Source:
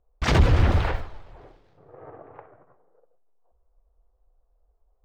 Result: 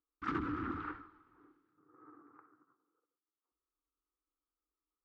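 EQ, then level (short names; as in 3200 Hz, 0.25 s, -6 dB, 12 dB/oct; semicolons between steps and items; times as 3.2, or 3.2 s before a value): double band-pass 620 Hz, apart 2.1 oct; -3.0 dB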